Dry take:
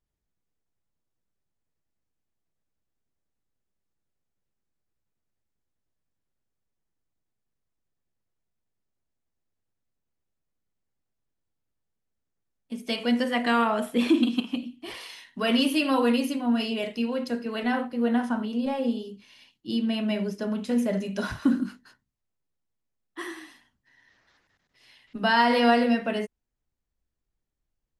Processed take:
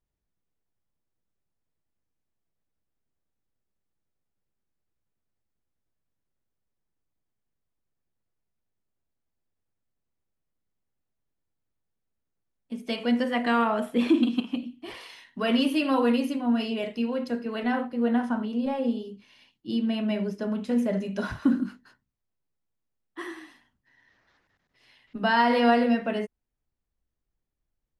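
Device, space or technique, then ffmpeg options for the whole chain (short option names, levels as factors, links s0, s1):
behind a face mask: -af "highshelf=f=3400:g=-8"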